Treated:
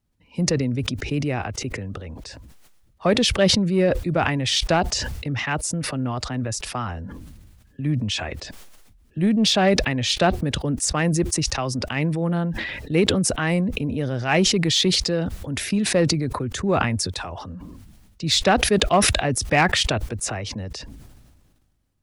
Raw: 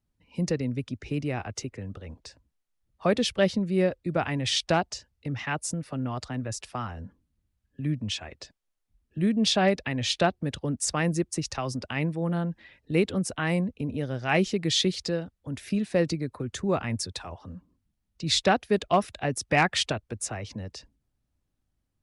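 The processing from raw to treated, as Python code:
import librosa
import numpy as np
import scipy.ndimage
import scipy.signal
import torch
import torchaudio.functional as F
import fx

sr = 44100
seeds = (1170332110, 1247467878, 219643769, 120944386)

p1 = np.clip(x, -10.0 ** (-21.5 / 20.0), 10.0 ** (-21.5 / 20.0))
p2 = x + (p1 * librosa.db_to_amplitude(-10.5))
p3 = fx.sustainer(p2, sr, db_per_s=34.0)
y = p3 * librosa.db_to_amplitude(2.5)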